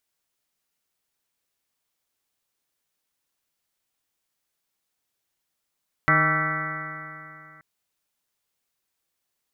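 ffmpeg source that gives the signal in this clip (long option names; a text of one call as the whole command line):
ffmpeg -f lavfi -i "aevalsrc='0.0668*pow(10,-3*t/2.76)*sin(2*PI*153.23*t)+0.0355*pow(10,-3*t/2.76)*sin(2*PI*307.83*t)+0.0141*pow(10,-3*t/2.76)*sin(2*PI*465.16*t)+0.0335*pow(10,-3*t/2.76)*sin(2*PI*626.52*t)+0.0237*pow(10,-3*t/2.76)*sin(2*PI*793.17*t)+0.0126*pow(10,-3*t/2.76)*sin(2*PI*966.3*t)+0.0596*pow(10,-3*t/2.76)*sin(2*PI*1147.02*t)+0.0944*pow(10,-3*t/2.76)*sin(2*PI*1336.35*t)+0.0668*pow(10,-3*t/2.76)*sin(2*PI*1535.22*t)+0.0266*pow(10,-3*t/2.76)*sin(2*PI*1744.47*t)+0.112*pow(10,-3*t/2.76)*sin(2*PI*1964.86*t)+0.02*pow(10,-3*t/2.76)*sin(2*PI*2197.07*t)':duration=1.53:sample_rate=44100" out.wav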